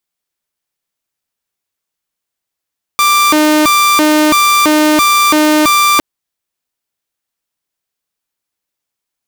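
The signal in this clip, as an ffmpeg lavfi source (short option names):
-f lavfi -i "aevalsrc='0.596*(2*mod((742.5*t+437.5/1.5*(0.5-abs(mod(1.5*t,1)-0.5))),1)-1)':d=3.01:s=44100"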